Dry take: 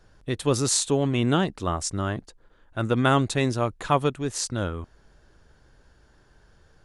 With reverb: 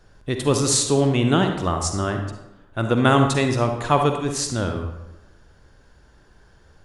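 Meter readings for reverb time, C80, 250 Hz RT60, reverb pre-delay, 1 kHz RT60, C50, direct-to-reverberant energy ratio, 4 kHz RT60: 0.95 s, 8.0 dB, 1.1 s, 40 ms, 0.95 s, 5.5 dB, 5.0 dB, 0.65 s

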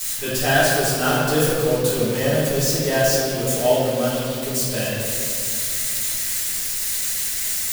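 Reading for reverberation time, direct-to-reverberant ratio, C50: 2.5 s, −11.0 dB, −2.5 dB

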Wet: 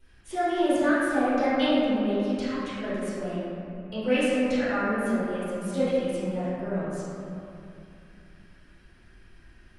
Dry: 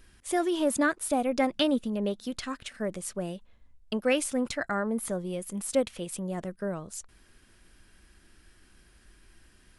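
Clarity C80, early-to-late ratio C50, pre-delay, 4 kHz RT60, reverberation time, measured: −2.0 dB, −5.0 dB, 10 ms, 1.8 s, 2.7 s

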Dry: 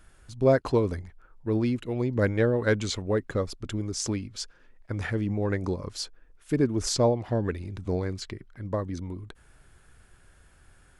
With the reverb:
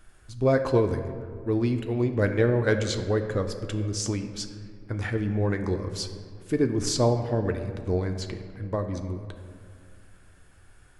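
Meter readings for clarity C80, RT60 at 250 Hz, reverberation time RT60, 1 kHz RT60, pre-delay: 10.0 dB, 2.5 s, 2.2 s, 2.1 s, 3 ms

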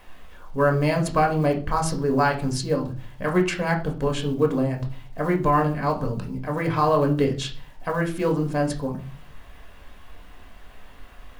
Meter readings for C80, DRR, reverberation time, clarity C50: 17.0 dB, 1.5 dB, 0.40 s, 11.0 dB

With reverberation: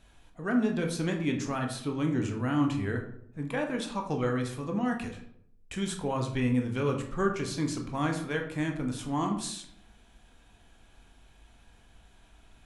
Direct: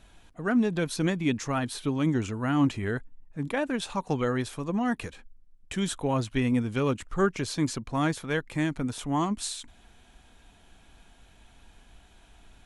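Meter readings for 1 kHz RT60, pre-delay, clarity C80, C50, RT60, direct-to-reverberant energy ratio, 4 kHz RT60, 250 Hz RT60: 0.60 s, 14 ms, 11.5 dB, 8.0 dB, 0.70 s, 2.5 dB, 0.40 s, 0.80 s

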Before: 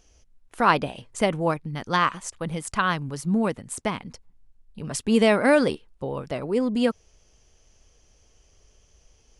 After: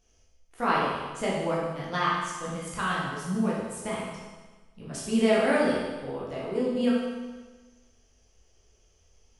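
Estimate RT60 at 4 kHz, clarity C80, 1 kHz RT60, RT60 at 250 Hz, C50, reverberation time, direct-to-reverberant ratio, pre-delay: 1.3 s, 2.0 dB, 1.3 s, 1.3 s, −0.5 dB, 1.3 s, −7.0 dB, 12 ms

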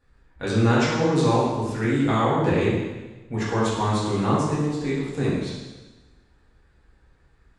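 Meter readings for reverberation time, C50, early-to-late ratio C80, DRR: 1.2 s, −0.5 dB, 2.0 dB, −8.5 dB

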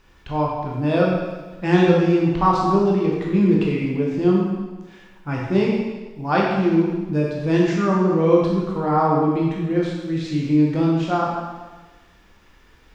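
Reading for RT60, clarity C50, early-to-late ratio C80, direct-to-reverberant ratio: 1.3 s, 0.5 dB, 2.5 dB, −3.5 dB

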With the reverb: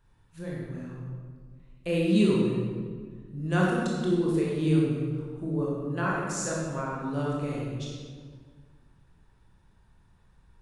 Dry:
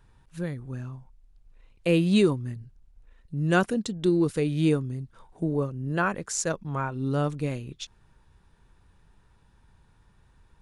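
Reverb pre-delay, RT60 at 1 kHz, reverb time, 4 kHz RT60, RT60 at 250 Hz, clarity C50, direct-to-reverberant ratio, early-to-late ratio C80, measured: 19 ms, 1.6 s, 1.7 s, 1.1 s, 2.1 s, −1.0 dB, −4.5 dB, 1.0 dB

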